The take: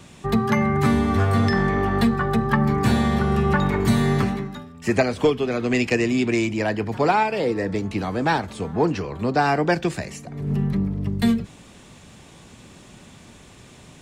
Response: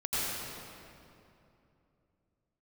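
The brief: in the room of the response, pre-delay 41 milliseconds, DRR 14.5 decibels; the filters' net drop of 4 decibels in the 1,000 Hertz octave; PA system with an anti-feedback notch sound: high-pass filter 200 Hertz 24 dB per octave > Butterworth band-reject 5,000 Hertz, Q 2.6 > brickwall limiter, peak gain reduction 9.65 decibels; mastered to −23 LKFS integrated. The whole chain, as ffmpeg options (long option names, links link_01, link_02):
-filter_complex "[0:a]equalizer=frequency=1000:width_type=o:gain=-5.5,asplit=2[link_01][link_02];[1:a]atrim=start_sample=2205,adelay=41[link_03];[link_02][link_03]afir=irnorm=-1:irlink=0,volume=-23dB[link_04];[link_01][link_04]amix=inputs=2:normalize=0,highpass=frequency=200:width=0.5412,highpass=frequency=200:width=1.3066,asuperstop=centerf=5000:order=8:qfactor=2.6,volume=4dB,alimiter=limit=-13.5dB:level=0:latency=1"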